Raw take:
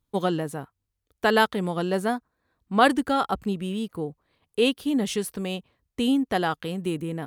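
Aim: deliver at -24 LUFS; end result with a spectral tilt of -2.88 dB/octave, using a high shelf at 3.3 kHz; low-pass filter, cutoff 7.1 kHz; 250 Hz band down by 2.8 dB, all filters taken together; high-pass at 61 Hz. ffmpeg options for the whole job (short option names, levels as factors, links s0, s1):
-af "highpass=61,lowpass=7100,equalizer=f=250:t=o:g=-3.5,highshelf=f=3300:g=4,volume=1.33"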